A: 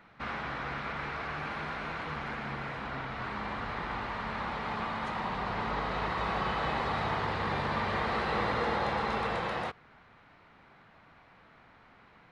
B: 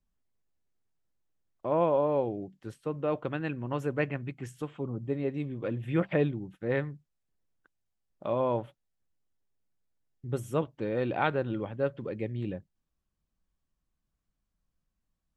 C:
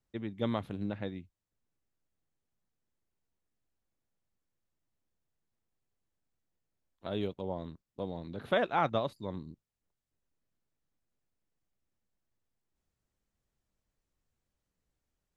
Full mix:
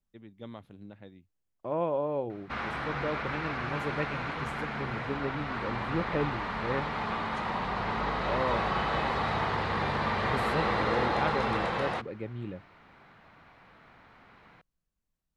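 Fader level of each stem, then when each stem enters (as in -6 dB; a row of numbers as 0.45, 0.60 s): +2.0, -4.0, -11.5 dB; 2.30, 0.00, 0.00 s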